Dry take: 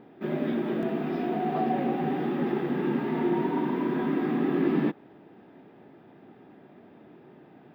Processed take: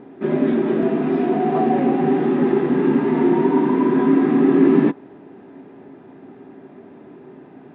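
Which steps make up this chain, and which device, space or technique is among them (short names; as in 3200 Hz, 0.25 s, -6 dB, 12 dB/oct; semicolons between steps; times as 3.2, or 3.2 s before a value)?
inside a cardboard box (LPF 3000 Hz 12 dB/oct; small resonant body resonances 270/390/1000 Hz, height 8 dB, ringing for 95 ms); gain +7 dB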